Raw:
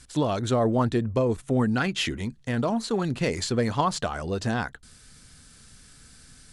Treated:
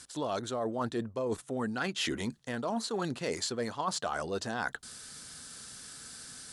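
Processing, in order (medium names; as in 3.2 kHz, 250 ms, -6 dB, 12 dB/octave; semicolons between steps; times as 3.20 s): high-pass 470 Hz 6 dB/octave; peaking EQ 2.3 kHz -5.5 dB 0.7 oct; reverse; compression 10:1, threshold -37 dBFS, peak gain reduction 17 dB; reverse; trim +7 dB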